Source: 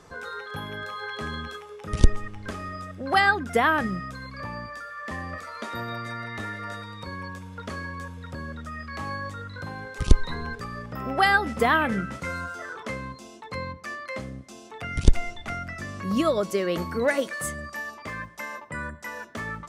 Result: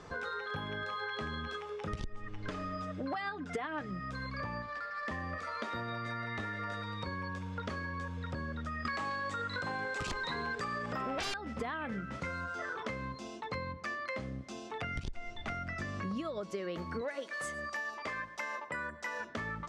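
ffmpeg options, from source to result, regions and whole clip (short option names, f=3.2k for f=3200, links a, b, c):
-filter_complex "[0:a]asettb=1/sr,asplit=3[a][b][c];[a]atrim=end=2.274[d];[b]atrim=start=2.27:end=3.91,asetpts=PTS-STARTPTS,afade=t=in:d=0.004:c=qsin,afade=t=out:st=1.636:d=0.004:c=qsin,lowpass=10k,aecho=1:1:6.7:0.63,atrim=end_sample=72324[e];[c]atrim=start=3.906[f];[d][e]acrossfade=d=0.004:c1=hsin:c2=qsin[g];[g][f]acrossfade=d=0.004:c1=qsin:c2=hsin,asettb=1/sr,asplit=3[h][i][j];[h]atrim=end=4.624[k];[i]atrim=start=4.62:end=5.07,asetpts=PTS-STARTPTS,afade=t=in:d=0.004:c=qsin,afade=t=out:st=0.446:d=0.004:c=qsin,lowshelf=f=470:g=-8,adynamicsmooth=sensitivity=6.5:basefreq=1.1k[l];[j]atrim=start=5.066[m];[k][l]acrossfade=d=0.004:c1=hsin:c2=qsin[n];[n][m]acrossfade=d=0.004:c1=qsin:c2=hsin,asettb=1/sr,asplit=3[o][p][q];[o]atrim=end=8.854[r];[p]atrim=start=8.85:end=11.34,asetpts=PTS-STARTPTS,afade=t=in:d=0.004:c=qsin,afade=t=out:st=2.486:d=0.004:c=qsin,highpass=f=380:p=1,equalizer=f=7.8k:w=3.5:g=7.5,aeval=exprs='0.422*sin(PI/2*7.94*val(0)/0.422)':c=same[s];[q]atrim=start=11.336[t];[r][s]acrossfade=d=0.004:c1=hsin:c2=qsin[u];[u][t]acrossfade=d=0.004:c1=qsin:c2=hsin,asettb=1/sr,asplit=3[v][w][x];[v]atrim=end=17.014[y];[w]atrim=start=17.01:end=19.2,asetpts=PTS-STARTPTS,afade=t=in:d=0.004:c=qsin,afade=t=out:st=2.186:d=0.004:c=qsin,bass=f=250:g=-12,treble=f=4k:g=2,aecho=1:1:108:0.0631,atrim=end_sample=96579[z];[x]atrim=start=19.196[aa];[y][z]acrossfade=d=0.004:c1=hsin:c2=qsin[ab];[ab][aa]acrossfade=d=0.004:c1=qsin:c2=hsin,lowpass=5.3k,alimiter=limit=-13.5dB:level=0:latency=1:release=133,acompressor=threshold=-36dB:ratio=10,volume=1dB"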